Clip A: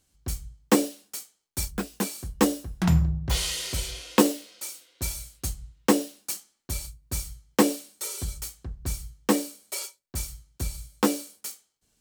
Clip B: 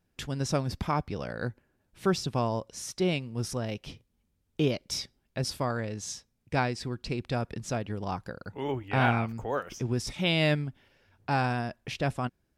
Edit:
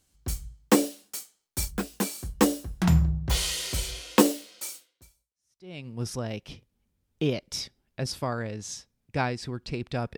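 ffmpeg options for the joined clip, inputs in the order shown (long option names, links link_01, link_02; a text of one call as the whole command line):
ffmpeg -i cue0.wav -i cue1.wav -filter_complex "[0:a]apad=whole_dur=10.17,atrim=end=10.17,atrim=end=5.88,asetpts=PTS-STARTPTS[link_01];[1:a]atrim=start=2.14:end=7.55,asetpts=PTS-STARTPTS[link_02];[link_01][link_02]acrossfade=duration=1.12:curve1=exp:curve2=exp" out.wav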